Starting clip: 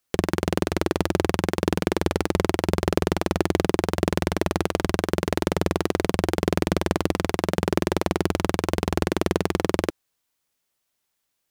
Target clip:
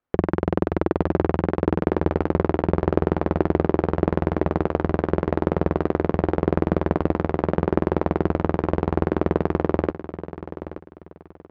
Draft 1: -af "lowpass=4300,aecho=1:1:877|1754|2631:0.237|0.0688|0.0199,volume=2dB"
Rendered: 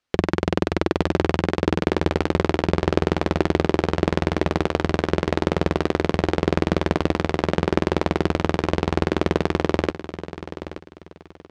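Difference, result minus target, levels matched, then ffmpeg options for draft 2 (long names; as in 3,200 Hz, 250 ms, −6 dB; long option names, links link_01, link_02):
4,000 Hz band +15.0 dB
-af "lowpass=1300,aecho=1:1:877|1754|2631:0.237|0.0688|0.0199,volume=2dB"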